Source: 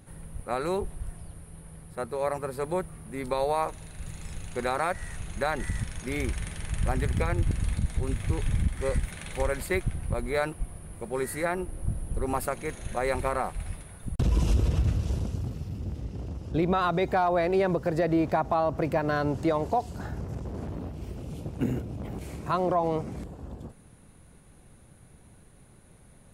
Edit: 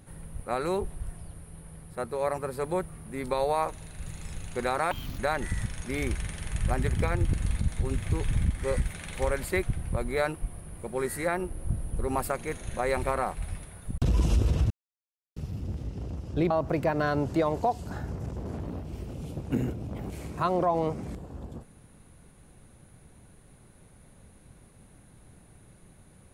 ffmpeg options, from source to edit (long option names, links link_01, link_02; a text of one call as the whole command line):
ffmpeg -i in.wav -filter_complex "[0:a]asplit=6[link_01][link_02][link_03][link_04][link_05][link_06];[link_01]atrim=end=4.914[link_07];[link_02]atrim=start=4.91:end=5.36,asetpts=PTS-STARTPTS,asetrate=72765,aresample=44100,atrim=end_sample=12027,asetpts=PTS-STARTPTS[link_08];[link_03]atrim=start=5.356:end=14.88,asetpts=PTS-STARTPTS,afade=type=out:start_time=9.52:duration=0.004:curve=hsin[link_09];[link_04]atrim=start=14.88:end=15.54,asetpts=PTS-STARTPTS,volume=0[link_10];[link_05]atrim=start=15.54:end=16.682,asetpts=PTS-STARTPTS,afade=type=in:duration=0.004:curve=hsin[link_11];[link_06]atrim=start=18.588[link_12];[link_07][link_08]acrossfade=duration=0.004:curve1=hsin:curve2=hsin[link_13];[link_09][link_10][link_11]concat=n=3:v=0:a=1[link_14];[link_13][link_14]acrossfade=duration=0.004:curve1=hsin:curve2=hsin[link_15];[link_15][link_12]acrossfade=duration=0.004:curve1=hsin:curve2=hsin" out.wav